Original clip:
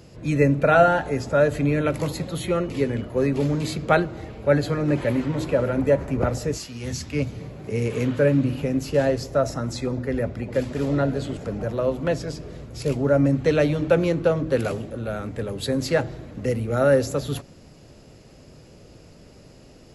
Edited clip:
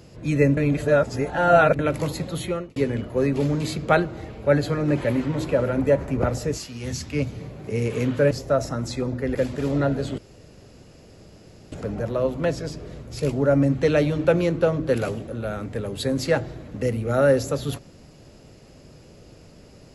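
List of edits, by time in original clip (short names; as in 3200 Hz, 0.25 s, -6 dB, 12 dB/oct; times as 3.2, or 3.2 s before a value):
0.57–1.79 reverse
2.41–2.76 fade out
8.31–9.16 cut
10.2–10.52 cut
11.35 insert room tone 1.54 s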